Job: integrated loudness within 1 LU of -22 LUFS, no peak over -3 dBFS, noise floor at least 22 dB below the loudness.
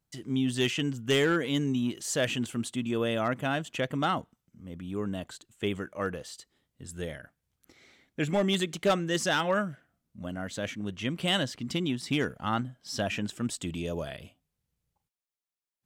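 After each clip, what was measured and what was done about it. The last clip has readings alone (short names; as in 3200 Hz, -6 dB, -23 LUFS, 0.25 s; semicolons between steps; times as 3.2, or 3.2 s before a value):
clipped 0.2%; flat tops at -18.5 dBFS; loudness -30.5 LUFS; peak -18.5 dBFS; loudness target -22.0 LUFS
-> clip repair -18.5 dBFS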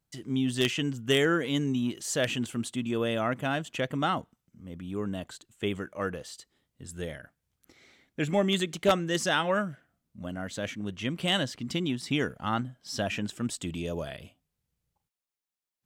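clipped 0.0%; loudness -30.0 LUFS; peak -9.5 dBFS; loudness target -22.0 LUFS
-> gain +8 dB; limiter -3 dBFS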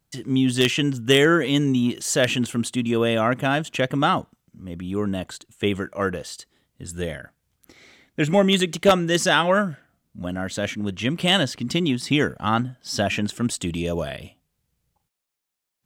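loudness -22.0 LUFS; peak -3.0 dBFS; noise floor -77 dBFS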